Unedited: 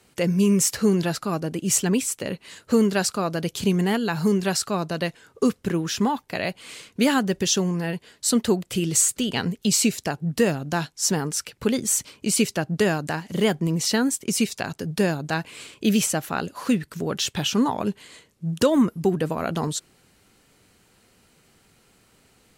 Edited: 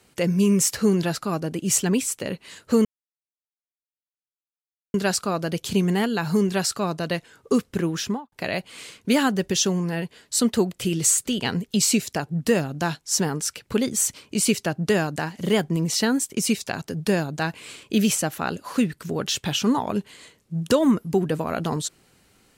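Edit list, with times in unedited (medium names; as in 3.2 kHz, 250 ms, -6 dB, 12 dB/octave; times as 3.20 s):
2.85 s: insert silence 2.09 s
5.89–6.23 s: studio fade out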